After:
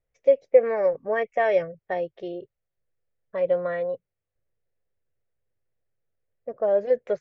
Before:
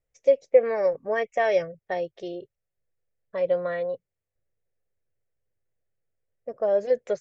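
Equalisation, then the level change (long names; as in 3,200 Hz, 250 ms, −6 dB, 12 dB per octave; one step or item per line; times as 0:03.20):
low-pass filter 2,800 Hz 12 dB per octave
+1.0 dB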